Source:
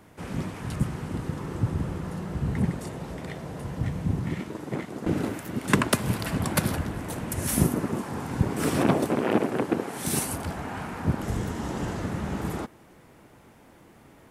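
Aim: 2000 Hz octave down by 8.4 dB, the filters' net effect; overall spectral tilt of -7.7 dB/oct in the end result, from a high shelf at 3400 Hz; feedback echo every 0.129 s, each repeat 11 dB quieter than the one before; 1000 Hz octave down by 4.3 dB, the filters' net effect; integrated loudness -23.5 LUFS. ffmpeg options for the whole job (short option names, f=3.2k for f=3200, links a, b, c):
-af "equalizer=f=1k:t=o:g=-3,equalizer=f=2k:t=o:g=-8,highshelf=f=3.4k:g=-7,aecho=1:1:129|258|387:0.282|0.0789|0.0221,volume=6dB"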